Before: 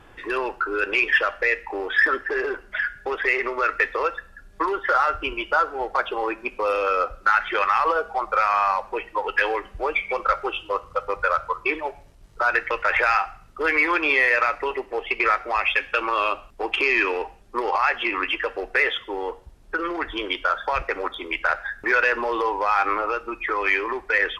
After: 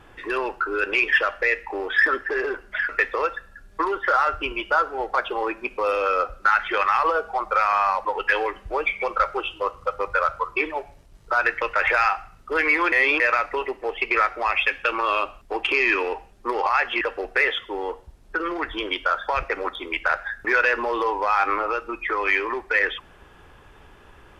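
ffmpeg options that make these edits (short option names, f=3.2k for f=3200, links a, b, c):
-filter_complex "[0:a]asplit=6[a][b][c][d][e][f];[a]atrim=end=2.892[g];[b]atrim=start=3.698:end=8.862[h];[c]atrim=start=9.138:end=14.012[i];[d]atrim=start=14.008:end=14.292,asetpts=PTS-STARTPTS,areverse[j];[e]atrim=start=14.288:end=18.102[k];[f]atrim=start=18.398[l];[g][h]acrossfade=d=0.004:c1=hsin:c2=hsin[m];[m][i]acrossfade=d=0.004:c1=hsin:c2=hsin[n];[n][j]acrossfade=d=0.004:c1=hsin:c2=hsin[o];[o][k]acrossfade=d=0.004:c1=hsin:c2=hsin[p];[p][l]acrossfade=d=0.004:c1=hsin:c2=hsin"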